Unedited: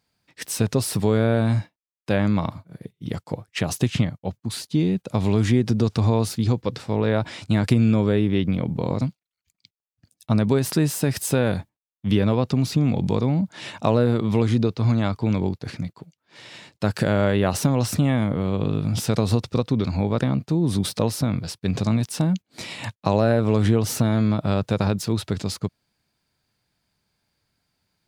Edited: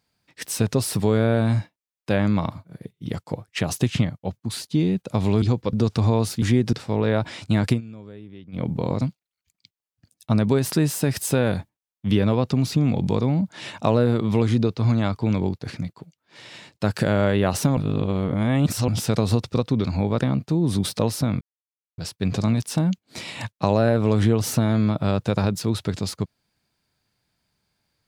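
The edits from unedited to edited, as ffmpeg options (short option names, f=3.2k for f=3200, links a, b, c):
-filter_complex "[0:a]asplit=10[a][b][c][d][e][f][g][h][i][j];[a]atrim=end=5.422[k];[b]atrim=start=6.418:end=6.732[l];[c]atrim=start=5.728:end=6.422[m];[d]atrim=start=5.418:end=5.732[n];[e]atrim=start=6.728:end=7.81,asetpts=PTS-STARTPTS,afade=t=out:st=0.942:d=0.14:c=qsin:silence=0.0891251[o];[f]atrim=start=7.81:end=8.52,asetpts=PTS-STARTPTS,volume=-21dB[p];[g]atrim=start=8.52:end=17.772,asetpts=PTS-STARTPTS,afade=t=in:d=0.14:c=qsin:silence=0.0891251[q];[h]atrim=start=17.768:end=18.882,asetpts=PTS-STARTPTS,areverse[r];[i]atrim=start=18.878:end=21.41,asetpts=PTS-STARTPTS,afade=t=out:st=2.528:d=0.004:c=hsin,apad=pad_dur=0.57[s];[j]atrim=start=21.41,asetpts=PTS-STARTPTS,afade=t=in:d=0.004:c=hsin[t];[k][l]acrossfade=d=0.004:c1=hsin:c2=hsin[u];[u][m]acrossfade=d=0.004:c1=hsin:c2=hsin[v];[v][n]acrossfade=d=0.004:c1=hsin:c2=hsin[w];[o][p][q]concat=n=3:v=0:a=1[x];[w][x]acrossfade=d=0.004:c1=hsin:c2=hsin[y];[y][r]acrossfade=d=0.004:c1=hsin:c2=hsin[z];[s][t]concat=n=2:v=0:a=1[aa];[z][aa]acrossfade=d=0.004:c1=hsin:c2=hsin"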